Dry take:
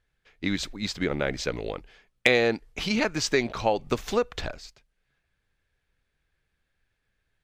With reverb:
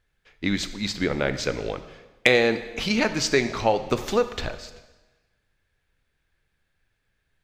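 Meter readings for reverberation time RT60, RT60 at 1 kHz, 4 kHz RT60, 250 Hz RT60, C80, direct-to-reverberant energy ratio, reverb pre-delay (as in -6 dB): 1.2 s, 1.2 s, 1.1 s, 1.2 s, 13.5 dB, 10.0 dB, 6 ms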